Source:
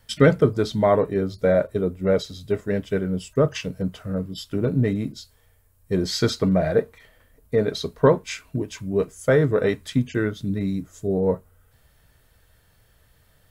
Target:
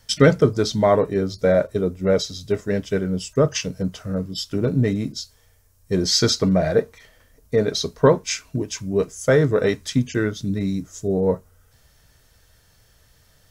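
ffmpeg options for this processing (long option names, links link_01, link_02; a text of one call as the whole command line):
ffmpeg -i in.wav -af "equalizer=frequency=5800:width=1.7:gain=11,volume=1.5dB" out.wav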